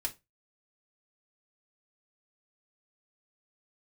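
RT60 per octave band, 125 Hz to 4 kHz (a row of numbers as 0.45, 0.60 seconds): 0.30, 0.25, 0.25, 0.20, 0.20, 0.20 seconds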